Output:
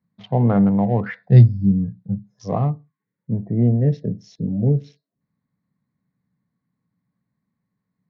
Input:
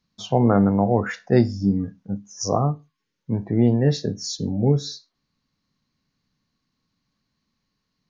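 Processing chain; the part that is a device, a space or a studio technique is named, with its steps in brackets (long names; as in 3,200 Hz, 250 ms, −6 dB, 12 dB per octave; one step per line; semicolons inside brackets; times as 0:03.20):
adaptive Wiener filter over 15 samples
guitar cabinet (loudspeaker in its box 83–3,700 Hz, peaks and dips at 120 Hz +7 dB, 180 Hz +8 dB, 340 Hz −4 dB, 1,300 Hz −4 dB, 2,000 Hz +6 dB)
0:01.23–0:02.41: octave-band graphic EQ 125/250/1,000/2,000/4,000 Hz +11/−6/−7/−7/+9 dB
0:03.27–0:05.21: gain on a spectral selection 730–5,100 Hz −11 dB
level −2 dB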